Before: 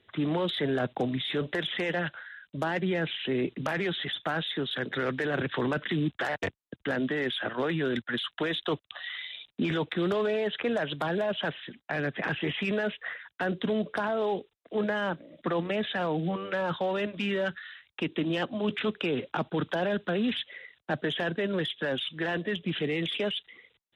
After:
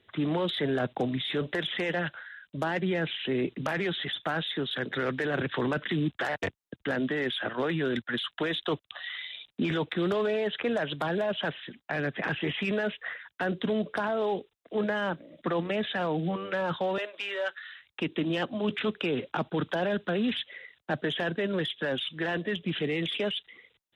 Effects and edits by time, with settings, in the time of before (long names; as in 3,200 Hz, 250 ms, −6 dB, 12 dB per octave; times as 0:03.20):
0:16.98–0:17.71: high-pass filter 490 Hz 24 dB per octave